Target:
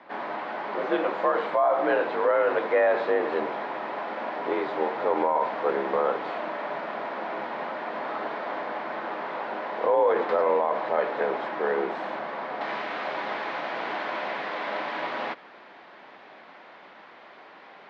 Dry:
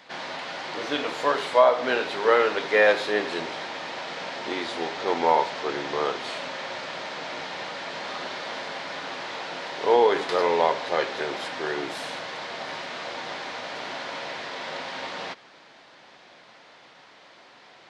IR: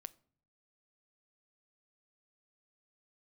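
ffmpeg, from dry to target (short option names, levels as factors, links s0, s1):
-af "asetnsamples=n=441:p=0,asendcmd='12.61 lowpass f 2100',lowpass=1300,alimiter=limit=0.126:level=0:latency=1:release=55,afreqshift=53,volume=1.68"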